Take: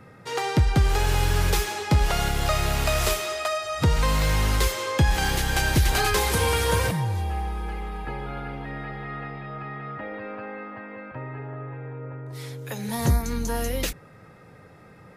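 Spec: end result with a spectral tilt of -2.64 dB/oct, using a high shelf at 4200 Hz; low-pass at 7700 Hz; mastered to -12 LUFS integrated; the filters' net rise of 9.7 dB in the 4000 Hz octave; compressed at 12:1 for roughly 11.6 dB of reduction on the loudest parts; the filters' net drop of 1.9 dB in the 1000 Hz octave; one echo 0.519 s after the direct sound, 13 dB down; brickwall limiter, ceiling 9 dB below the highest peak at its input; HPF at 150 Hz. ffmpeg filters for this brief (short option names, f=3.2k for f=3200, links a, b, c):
-af "highpass=150,lowpass=7.7k,equalizer=f=1k:t=o:g=-3.5,equalizer=f=4k:t=o:g=7.5,highshelf=f=4.2k:g=9,acompressor=threshold=-28dB:ratio=12,alimiter=limit=-23dB:level=0:latency=1,aecho=1:1:519:0.224,volume=20.5dB"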